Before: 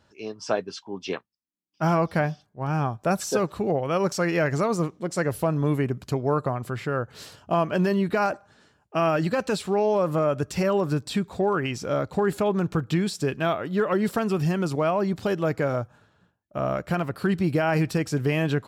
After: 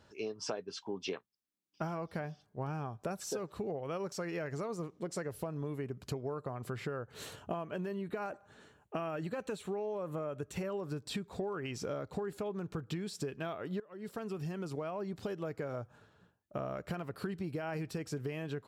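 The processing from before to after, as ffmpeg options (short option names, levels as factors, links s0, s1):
-filter_complex "[0:a]asettb=1/sr,asplit=3[s0][s1][s2];[s0]atrim=end=7.144[s3];[s1]atrim=start=7.14:end=10.7,asetpts=PTS-STARTPTS,afade=t=in:d=0.004:c=qsin,afade=t=out:st=3.556:d=0.004:c=qsin,equalizer=f=5000:t=o:w=0.24:g=-13.5[s4];[s2]atrim=start=10.696[s5];[s3][s4]acrossfade=d=0.004:c1=hsin:c2=qsin[s6];[s6][s5]acrossfade=d=0.004:c1=qsin:c2=hsin,asplit=2[s7][s8];[s7]atrim=end=13.8,asetpts=PTS-STARTPTS,afade=t=out:st=13.796:d=0.004:c=hsin:silence=0.0749894[s9];[s8]atrim=start=13.8,asetpts=PTS-STARTPTS,afade=t=in:d=3.05:silence=0.0749894[s10];[s9][s10]concat=n=2:v=0:a=1,equalizer=f=430:t=o:w=0.38:g=4.5,acompressor=threshold=0.02:ratio=12,volume=0.891"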